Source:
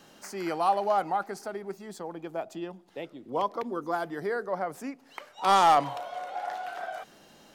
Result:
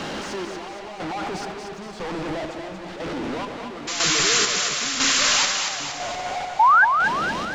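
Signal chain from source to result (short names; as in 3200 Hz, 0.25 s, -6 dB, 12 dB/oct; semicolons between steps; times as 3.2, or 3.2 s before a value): infinite clipping; air absorption 130 m; painted sound noise, 3.87–5.52, 1000–7500 Hz -22 dBFS; chopper 1 Hz, depth 60%, duty 45%; painted sound rise, 6.59–6.85, 830–1700 Hz -15 dBFS; split-band echo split 580 Hz, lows 0.141 s, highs 0.233 s, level -5.5 dB; gain +1.5 dB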